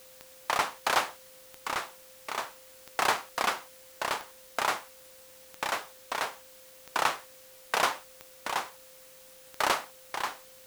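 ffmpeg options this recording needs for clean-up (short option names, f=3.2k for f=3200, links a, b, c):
-af "adeclick=t=4,bandreject=f=520:w=30,afwtdn=0.002"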